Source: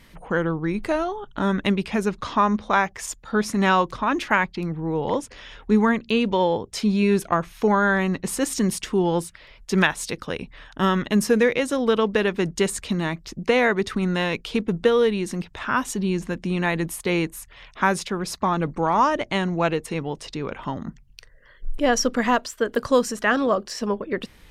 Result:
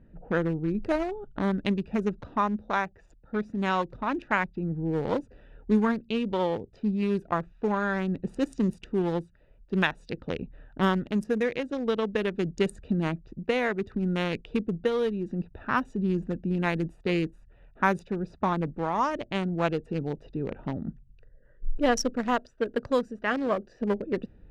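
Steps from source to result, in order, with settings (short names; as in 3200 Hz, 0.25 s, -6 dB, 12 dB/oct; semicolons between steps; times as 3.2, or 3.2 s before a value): Wiener smoothing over 41 samples; vocal rider within 4 dB 0.5 s; low-pass opened by the level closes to 2300 Hz, open at -17.5 dBFS; gain -4.5 dB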